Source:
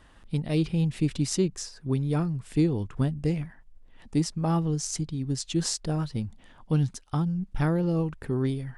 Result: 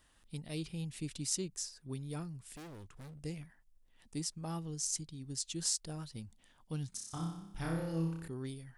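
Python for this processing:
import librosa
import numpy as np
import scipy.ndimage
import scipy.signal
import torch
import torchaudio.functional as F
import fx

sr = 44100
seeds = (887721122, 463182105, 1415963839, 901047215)

y = fx.overload_stage(x, sr, gain_db=32.5, at=(2.53, 3.21))
y = F.preemphasis(torch.from_numpy(y), 0.8).numpy()
y = fx.room_flutter(y, sr, wall_m=5.2, rt60_s=0.79, at=(6.89, 8.28))
y = y * librosa.db_to_amplitude(-1.5)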